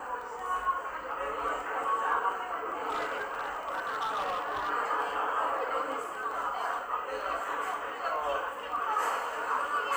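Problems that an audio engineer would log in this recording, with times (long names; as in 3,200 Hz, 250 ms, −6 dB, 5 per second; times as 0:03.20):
surface crackle 10 per second
0:02.89–0:04.70: clipping −28.5 dBFS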